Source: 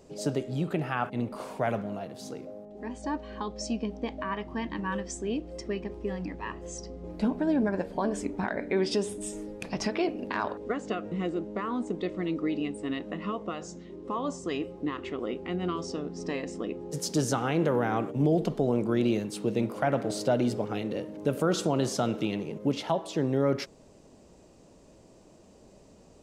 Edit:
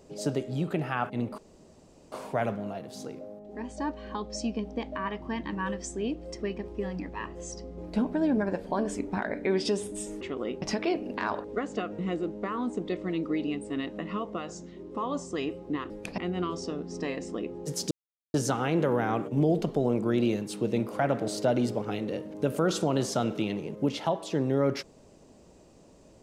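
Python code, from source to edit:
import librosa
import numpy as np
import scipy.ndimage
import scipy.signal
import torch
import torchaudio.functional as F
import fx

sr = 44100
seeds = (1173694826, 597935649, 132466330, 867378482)

y = fx.edit(x, sr, fx.insert_room_tone(at_s=1.38, length_s=0.74),
    fx.swap(start_s=9.47, length_s=0.28, other_s=15.03, other_length_s=0.41),
    fx.insert_silence(at_s=17.17, length_s=0.43), tone=tone)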